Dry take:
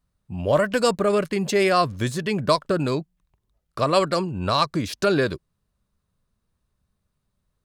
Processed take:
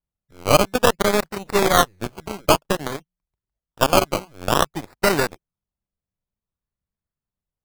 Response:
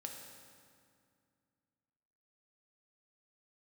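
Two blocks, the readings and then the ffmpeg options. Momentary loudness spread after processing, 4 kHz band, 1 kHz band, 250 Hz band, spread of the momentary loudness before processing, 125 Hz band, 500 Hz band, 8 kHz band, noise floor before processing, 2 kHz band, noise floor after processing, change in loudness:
11 LU, +3.5 dB, +3.0 dB, -0.5 dB, 8 LU, -1.5 dB, +0.5 dB, +9.0 dB, -77 dBFS, +3.5 dB, under -85 dBFS, +2.5 dB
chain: -af "acrusher=samples=19:mix=1:aa=0.000001:lfo=1:lforange=11.4:lforate=0.54,aeval=exprs='0.473*(cos(1*acos(clip(val(0)/0.473,-1,1)))-cos(1*PI/2))+0.133*(cos(2*acos(clip(val(0)/0.473,-1,1)))-cos(2*PI/2))+0.075*(cos(7*acos(clip(val(0)/0.473,-1,1)))-cos(7*PI/2))':c=same,volume=3dB"

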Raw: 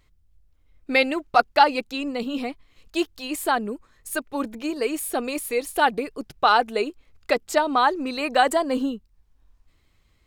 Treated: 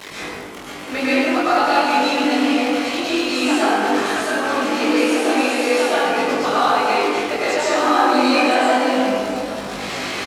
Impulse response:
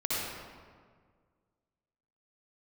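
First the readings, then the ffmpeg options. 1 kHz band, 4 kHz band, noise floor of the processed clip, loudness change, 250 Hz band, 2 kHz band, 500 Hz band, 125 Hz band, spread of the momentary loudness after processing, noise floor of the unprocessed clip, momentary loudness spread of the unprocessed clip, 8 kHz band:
+4.5 dB, +8.0 dB, -33 dBFS, +6.0 dB, +9.5 dB, +6.5 dB, +6.5 dB, n/a, 10 LU, -63 dBFS, 12 LU, +6.0 dB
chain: -filter_complex "[0:a]aeval=exprs='val(0)+0.5*0.075*sgn(val(0))':c=same,acrossover=split=8800[a][b];[b]acompressor=threshold=-37dB:ratio=4:attack=1:release=60[c];[a][c]amix=inputs=2:normalize=0,highpass=330,acrossover=split=1000|5900[d][e][f];[d]acompressor=threshold=-28dB:ratio=4[g];[e]acompressor=threshold=-28dB:ratio=4[h];[f]acompressor=threshold=-47dB:ratio=4[i];[g][h][i]amix=inputs=3:normalize=0,flanger=delay=18.5:depth=5.7:speed=2.8,asplit=2[j][k];[k]adelay=20,volume=-4dB[l];[j][l]amix=inputs=2:normalize=0[m];[1:a]atrim=start_sample=2205,asetrate=25578,aresample=44100[n];[m][n]afir=irnorm=-1:irlink=0"

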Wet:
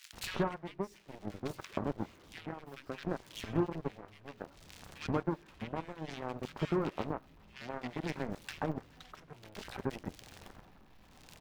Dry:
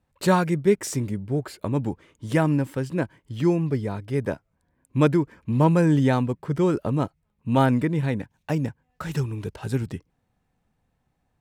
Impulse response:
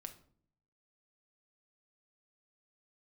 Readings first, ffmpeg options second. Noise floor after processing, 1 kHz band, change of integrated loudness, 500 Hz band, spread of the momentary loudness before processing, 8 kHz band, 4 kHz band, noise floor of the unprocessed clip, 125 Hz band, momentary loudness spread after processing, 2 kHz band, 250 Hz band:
-60 dBFS, -13.0 dB, -15.5 dB, -14.0 dB, 12 LU, n/a, -7.0 dB, -73 dBFS, -18.5 dB, 18 LU, -11.5 dB, -16.0 dB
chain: -filter_complex "[0:a]aeval=exprs='val(0)+0.5*0.0398*sgn(val(0))':c=same,equalizer=f=125:t=o:w=1:g=-8,equalizer=f=500:t=o:w=1:g=-4,equalizer=f=8k:t=o:w=1:g=-11,asplit=2[a][b];[b]aeval=exprs='val(0)*gte(abs(val(0)),0.0282)':c=same,volume=-5dB[c];[a][c]amix=inputs=2:normalize=0,flanger=delay=2.1:depth=9.8:regen=88:speed=0.2:shape=sinusoidal,tremolo=f=0.6:d=0.79,acompressor=threshold=-41dB:ratio=3,highshelf=f=8.1k:g=-9,asplit=2[d][e];[1:a]atrim=start_sample=2205[f];[e][f]afir=irnorm=-1:irlink=0,volume=3dB[g];[d][g]amix=inputs=2:normalize=0,aeval=exprs='0.0944*(cos(1*acos(clip(val(0)/0.0944,-1,1)))-cos(1*PI/2))+0.0168*(cos(7*acos(clip(val(0)/0.0944,-1,1)))-cos(7*PI/2))':c=same,acrossover=split=1700[h][i];[h]adelay=130[j];[j][i]amix=inputs=2:normalize=0,volume=2dB"

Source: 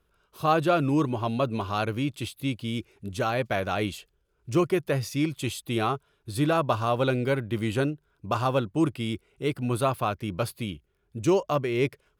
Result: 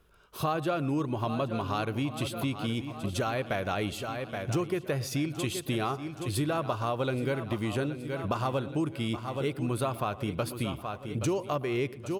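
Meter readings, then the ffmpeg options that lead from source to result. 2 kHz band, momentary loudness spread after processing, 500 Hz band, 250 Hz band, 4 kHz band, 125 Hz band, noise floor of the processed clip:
-3.5 dB, 4 LU, -4.5 dB, -4.0 dB, -2.5 dB, -3.0 dB, -45 dBFS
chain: -filter_complex "[0:a]asplit=2[a][b];[b]aecho=0:1:823|1646|2469|3292:0.2|0.0838|0.0352|0.0148[c];[a][c]amix=inputs=2:normalize=0,acompressor=threshold=-35dB:ratio=4,asplit=2[d][e];[e]adelay=115,lowpass=f=1.8k:p=1,volume=-17.5dB,asplit=2[f][g];[g]adelay=115,lowpass=f=1.8k:p=1,volume=0.47,asplit=2[h][i];[i]adelay=115,lowpass=f=1.8k:p=1,volume=0.47,asplit=2[j][k];[k]adelay=115,lowpass=f=1.8k:p=1,volume=0.47[l];[f][h][j][l]amix=inputs=4:normalize=0[m];[d][m]amix=inputs=2:normalize=0,volume=6dB"

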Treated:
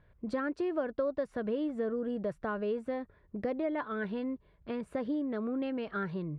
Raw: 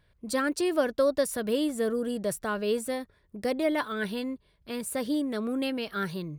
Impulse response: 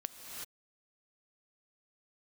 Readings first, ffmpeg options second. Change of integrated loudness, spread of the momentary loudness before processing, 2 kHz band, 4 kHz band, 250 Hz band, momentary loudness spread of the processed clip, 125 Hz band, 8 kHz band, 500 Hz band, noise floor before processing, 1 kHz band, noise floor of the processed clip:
-5.5 dB, 9 LU, -7.5 dB, -16.5 dB, -4.0 dB, 6 LU, -1.5 dB, under -30 dB, -5.5 dB, -67 dBFS, -5.0 dB, -65 dBFS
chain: -af "lowpass=1.7k,acompressor=threshold=-37dB:ratio=2.5,volume=3dB"

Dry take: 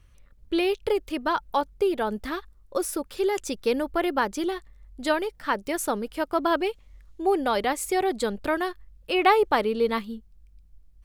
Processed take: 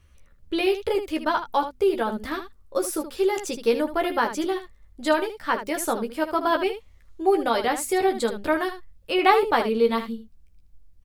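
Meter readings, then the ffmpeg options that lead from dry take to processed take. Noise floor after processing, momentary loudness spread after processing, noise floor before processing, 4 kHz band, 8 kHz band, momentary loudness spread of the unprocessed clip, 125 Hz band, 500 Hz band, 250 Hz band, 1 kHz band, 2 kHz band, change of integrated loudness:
-55 dBFS, 10 LU, -55 dBFS, +1.5 dB, +1.5 dB, 9 LU, n/a, +2.0 dB, +1.5 dB, +2.0 dB, +1.5 dB, +2.0 dB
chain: -filter_complex "[0:a]bandreject=f=50:t=h:w=6,bandreject=f=100:t=h:w=6,bandreject=f=150:t=h:w=6,bandreject=f=200:t=h:w=6,bandreject=f=250:t=h:w=6,asplit=2[a][b];[b]aecho=0:1:13|77:0.596|0.335[c];[a][c]amix=inputs=2:normalize=0"

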